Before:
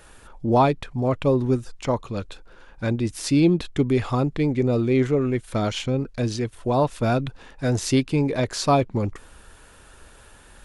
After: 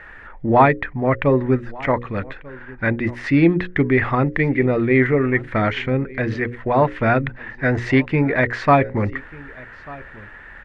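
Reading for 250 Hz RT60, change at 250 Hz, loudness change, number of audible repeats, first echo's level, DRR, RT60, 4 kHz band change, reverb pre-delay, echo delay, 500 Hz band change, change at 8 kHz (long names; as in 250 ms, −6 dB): no reverb audible, +3.0 dB, +4.0 dB, 1, −22.0 dB, no reverb audible, no reverb audible, −4.5 dB, no reverb audible, 1,192 ms, +3.5 dB, below −15 dB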